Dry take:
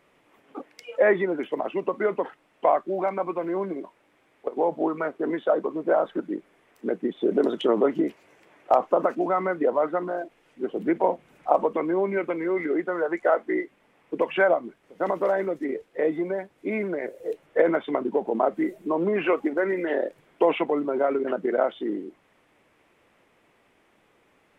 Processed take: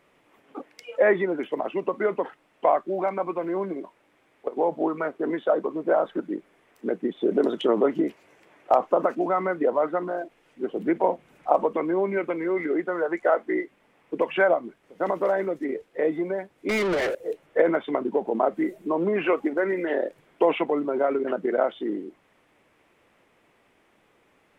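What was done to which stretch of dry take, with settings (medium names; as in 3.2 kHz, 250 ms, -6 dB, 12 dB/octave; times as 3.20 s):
16.69–17.15 s: overdrive pedal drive 31 dB, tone 3.2 kHz, clips at -18 dBFS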